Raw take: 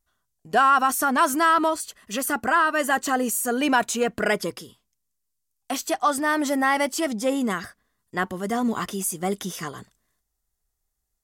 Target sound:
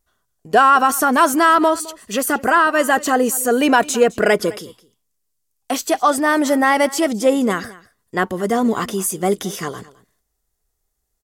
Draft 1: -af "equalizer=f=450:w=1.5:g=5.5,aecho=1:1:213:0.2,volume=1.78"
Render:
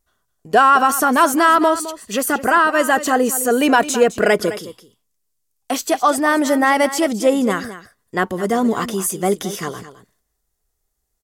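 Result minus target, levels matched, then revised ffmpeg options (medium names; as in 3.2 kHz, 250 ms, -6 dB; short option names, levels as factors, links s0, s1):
echo-to-direct +6.5 dB
-af "equalizer=f=450:w=1.5:g=5.5,aecho=1:1:213:0.0944,volume=1.78"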